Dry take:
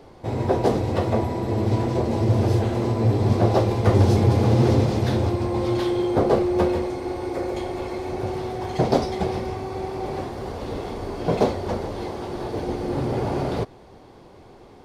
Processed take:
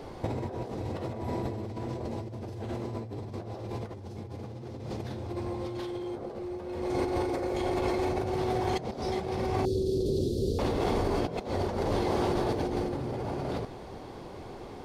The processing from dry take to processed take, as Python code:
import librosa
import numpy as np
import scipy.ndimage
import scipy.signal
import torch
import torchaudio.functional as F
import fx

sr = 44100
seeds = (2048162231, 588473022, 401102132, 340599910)

y = fx.ellip_bandstop(x, sr, low_hz=450.0, high_hz=3800.0, order=3, stop_db=40, at=(9.65, 10.59))
y = fx.over_compress(y, sr, threshold_db=-31.0, ratio=-1.0)
y = y * 10.0 ** (-2.5 / 20.0)